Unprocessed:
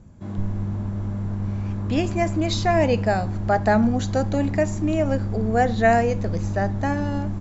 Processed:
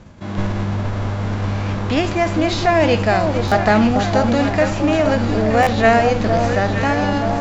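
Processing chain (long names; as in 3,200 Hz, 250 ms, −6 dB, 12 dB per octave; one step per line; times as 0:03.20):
spectral envelope flattened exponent 0.6
in parallel at −8 dB: asymmetric clip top −20 dBFS
on the sum: high-frequency loss of the air 140 metres
delay that swaps between a low-pass and a high-pass 462 ms, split 1,200 Hz, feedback 75%, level −5.5 dB
buffer that repeats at 0:03.47/0:05.62, samples 512, times 3
level +2 dB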